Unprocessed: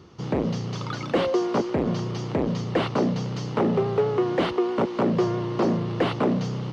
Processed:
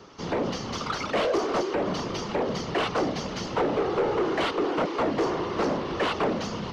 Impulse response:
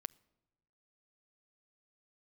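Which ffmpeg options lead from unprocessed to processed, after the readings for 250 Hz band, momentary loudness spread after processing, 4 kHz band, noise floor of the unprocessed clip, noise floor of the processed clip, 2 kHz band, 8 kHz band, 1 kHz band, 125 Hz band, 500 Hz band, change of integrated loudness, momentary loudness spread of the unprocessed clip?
-5.0 dB, 5 LU, +3.0 dB, -33 dBFS, -35 dBFS, +3.0 dB, no reading, +1.5 dB, -9.5 dB, -2.0 dB, -2.5 dB, 5 LU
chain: -filter_complex "[0:a]afftfilt=real='hypot(re,im)*cos(2*PI*random(0))':imag='hypot(re,im)*sin(2*PI*random(1))':win_size=512:overlap=0.75,acrossover=split=330|920[s0][s1][s2];[s0]alimiter=level_in=1.41:limit=0.0631:level=0:latency=1:release=281,volume=0.708[s3];[s3][s1][s2]amix=inputs=3:normalize=0,equalizer=f=6000:t=o:w=0.88:g=5.5,asplit=2[s4][s5];[s5]highpass=f=720:p=1,volume=8.91,asoftclip=type=tanh:threshold=0.158[s6];[s4][s6]amix=inputs=2:normalize=0,lowpass=f=2800:p=1,volume=0.501"

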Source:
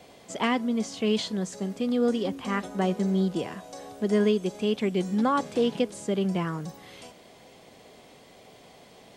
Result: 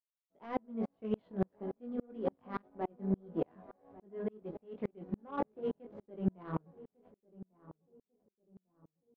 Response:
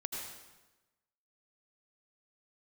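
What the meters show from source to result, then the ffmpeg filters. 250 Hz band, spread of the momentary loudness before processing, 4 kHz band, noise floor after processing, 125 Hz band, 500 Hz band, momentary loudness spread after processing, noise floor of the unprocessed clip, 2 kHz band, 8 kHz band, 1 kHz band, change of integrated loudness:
-12.5 dB, 12 LU, under -25 dB, under -85 dBFS, -10.5 dB, -12.5 dB, 20 LU, -53 dBFS, -19.0 dB, under -35 dB, -12.0 dB, -12.5 dB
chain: -filter_complex "[0:a]lowpass=3600,agate=range=0.0224:threshold=0.01:ratio=3:detection=peak,lowshelf=f=320:g=-10,areverse,acompressor=threshold=0.0251:ratio=10,areverse,flanger=delay=18:depth=3.5:speed=1.8,aeval=exprs='sgn(val(0))*max(abs(val(0))-0.00106,0)':c=same,adynamicsmooth=sensitivity=1:basefreq=730,asplit=2[s0][s1];[s1]adelay=1147,lowpass=f=1000:p=1,volume=0.133,asplit=2[s2][s3];[s3]adelay=1147,lowpass=f=1000:p=1,volume=0.36,asplit=2[s4][s5];[s5]adelay=1147,lowpass=f=1000:p=1,volume=0.36[s6];[s0][s2][s4][s6]amix=inputs=4:normalize=0,aeval=exprs='val(0)*pow(10,-38*if(lt(mod(-3.5*n/s,1),2*abs(-3.5)/1000),1-mod(-3.5*n/s,1)/(2*abs(-3.5)/1000),(mod(-3.5*n/s,1)-2*abs(-3.5)/1000)/(1-2*abs(-3.5)/1000))/20)':c=same,volume=3.98"

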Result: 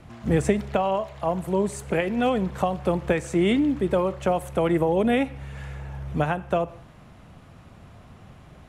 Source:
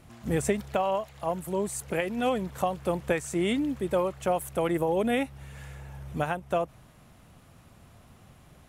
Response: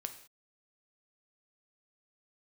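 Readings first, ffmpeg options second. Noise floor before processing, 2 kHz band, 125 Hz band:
-56 dBFS, +3.5 dB, +7.0 dB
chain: -filter_complex "[0:a]aemphasis=mode=reproduction:type=50fm,asplit=2[s0][s1];[1:a]atrim=start_sample=2205[s2];[s1][s2]afir=irnorm=-1:irlink=0,volume=0.631[s3];[s0][s3]amix=inputs=2:normalize=0,acrossover=split=300|3000[s4][s5][s6];[s5]acompressor=threshold=0.0501:ratio=2[s7];[s4][s7][s6]amix=inputs=3:normalize=0,volume=1.41"

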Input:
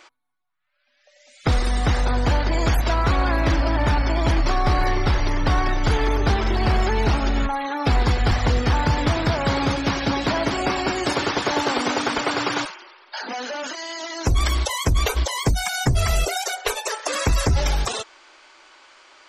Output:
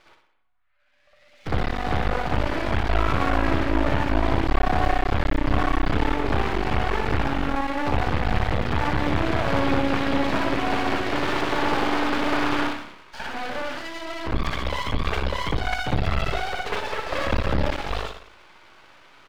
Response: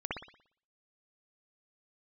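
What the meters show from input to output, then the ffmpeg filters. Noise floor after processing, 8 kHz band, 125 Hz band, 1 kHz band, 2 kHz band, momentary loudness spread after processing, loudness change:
-58 dBFS, -14.5 dB, -5.0 dB, -1.0 dB, -1.0 dB, 7 LU, -3.0 dB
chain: -filter_complex "[0:a]highshelf=f=4200:g=-5.5,bandreject=f=50:t=h:w=6,bandreject=f=100:t=h:w=6,asplit=5[s0][s1][s2][s3][s4];[s1]adelay=86,afreqshift=-34,volume=0.0891[s5];[s2]adelay=172,afreqshift=-68,volume=0.0473[s6];[s3]adelay=258,afreqshift=-102,volume=0.0251[s7];[s4]adelay=344,afreqshift=-136,volume=0.0133[s8];[s0][s5][s6][s7][s8]amix=inputs=5:normalize=0,aresample=16000,asoftclip=type=hard:threshold=0.119,aresample=44100,aresample=11025,aresample=44100[s9];[1:a]atrim=start_sample=2205[s10];[s9][s10]afir=irnorm=-1:irlink=0,aeval=exprs='max(val(0),0)':c=same"

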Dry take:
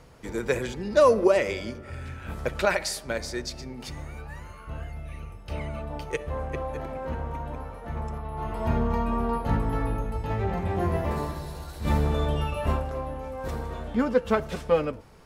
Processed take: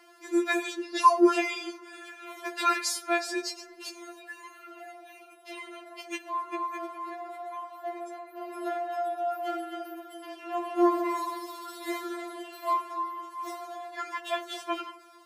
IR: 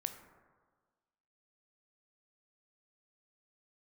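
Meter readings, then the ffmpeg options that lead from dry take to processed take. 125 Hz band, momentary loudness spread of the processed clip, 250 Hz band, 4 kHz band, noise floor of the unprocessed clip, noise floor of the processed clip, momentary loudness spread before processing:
under -40 dB, 19 LU, -1.0 dB, +1.0 dB, -44 dBFS, -52 dBFS, 14 LU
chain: -filter_complex "[0:a]highpass=f=230:w=0.5412,highpass=f=230:w=1.3066,asplit=2[s0][s1];[s1]equalizer=f=320:w=1.5:g=-11[s2];[1:a]atrim=start_sample=2205[s3];[s2][s3]afir=irnorm=-1:irlink=0,volume=0.75[s4];[s0][s4]amix=inputs=2:normalize=0,afftfilt=real='re*4*eq(mod(b,16),0)':imag='im*4*eq(mod(b,16),0)':win_size=2048:overlap=0.75"

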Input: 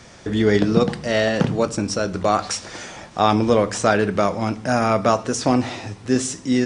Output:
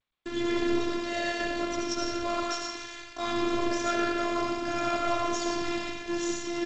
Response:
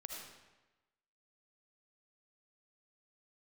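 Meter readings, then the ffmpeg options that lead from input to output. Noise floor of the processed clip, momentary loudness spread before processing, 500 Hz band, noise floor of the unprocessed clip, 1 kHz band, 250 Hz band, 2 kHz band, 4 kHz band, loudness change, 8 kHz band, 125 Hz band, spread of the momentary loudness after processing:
-46 dBFS, 10 LU, -11.5 dB, -44 dBFS, -9.0 dB, -9.5 dB, -6.5 dB, -5.5 dB, -10.0 dB, -9.0 dB, -21.5 dB, 6 LU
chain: -filter_complex "[0:a]dynaudnorm=f=660:g=5:m=6.31,equalizer=f=740:t=o:w=0.87:g=-8,aresample=16000,acrusher=bits=4:mix=0:aa=0.000001,aresample=44100,volume=6.31,asoftclip=hard,volume=0.158,bandreject=f=50:t=h:w=6,bandreject=f=100:t=h:w=6,bandreject=f=150:t=h:w=6,bandreject=f=200:t=h:w=6,bandreject=f=250:t=h:w=6,bandreject=f=300:t=h:w=6,bandreject=f=350:t=h:w=6,bandreject=f=400:t=h:w=6,bandreject=f=450:t=h:w=6,bandreject=f=500:t=h:w=6[s0];[1:a]atrim=start_sample=2205,afade=t=out:st=0.42:d=0.01,atrim=end_sample=18963,asetrate=37485,aresample=44100[s1];[s0][s1]afir=irnorm=-1:irlink=0,afftfilt=real='hypot(re,im)*cos(PI*b)':imag='0':win_size=512:overlap=0.75" -ar 16000 -c:a g722

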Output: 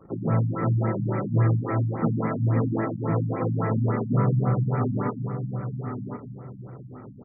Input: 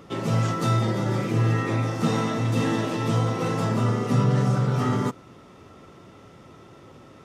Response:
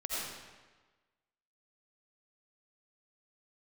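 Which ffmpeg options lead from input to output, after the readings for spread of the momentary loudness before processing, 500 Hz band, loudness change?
4 LU, -1.5 dB, -1.5 dB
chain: -filter_complex "[0:a]asplit=2[s0][s1];[s1]adelay=1061,lowpass=f=3600:p=1,volume=0.335,asplit=2[s2][s3];[s3]adelay=1061,lowpass=f=3600:p=1,volume=0.28,asplit=2[s4][s5];[s5]adelay=1061,lowpass=f=3600:p=1,volume=0.28[s6];[s0][s2][s4][s6]amix=inputs=4:normalize=0,asplit=2[s7][s8];[1:a]atrim=start_sample=2205[s9];[s8][s9]afir=irnorm=-1:irlink=0,volume=0.158[s10];[s7][s10]amix=inputs=2:normalize=0,anlmdn=0.0631,adynamicequalizer=threshold=0.0398:dfrequency=210:dqfactor=0.71:tfrequency=210:tqfactor=0.71:attack=5:release=100:ratio=0.375:range=1.5:mode=cutabove:tftype=bell,afftfilt=real='re*lt(b*sr/1024,250*pow(2500/250,0.5+0.5*sin(2*PI*3.6*pts/sr)))':imag='im*lt(b*sr/1024,250*pow(2500/250,0.5+0.5*sin(2*PI*3.6*pts/sr)))':win_size=1024:overlap=0.75"

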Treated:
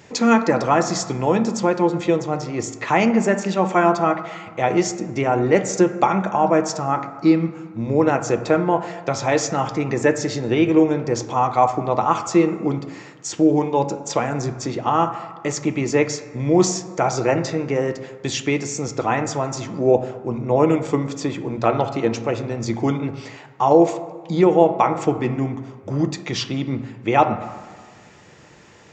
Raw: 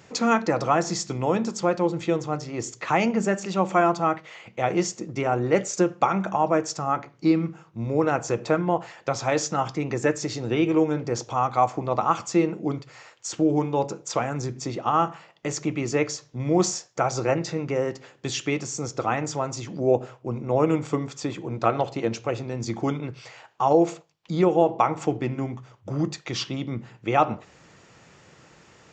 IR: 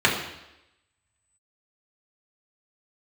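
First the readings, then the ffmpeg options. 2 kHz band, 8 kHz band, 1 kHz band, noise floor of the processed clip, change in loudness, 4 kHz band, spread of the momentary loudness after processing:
+5.0 dB, +3.5 dB, +4.5 dB, -45 dBFS, +5.0 dB, +3.5 dB, 10 LU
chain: -filter_complex "[0:a]asplit=2[s0][s1];[1:a]atrim=start_sample=2205,asetrate=24696,aresample=44100[s2];[s1][s2]afir=irnorm=-1:irlink=0,volume=0.0335[s3];[s0][s3]amix=inputs=2:normalize=0,volume=1.5"

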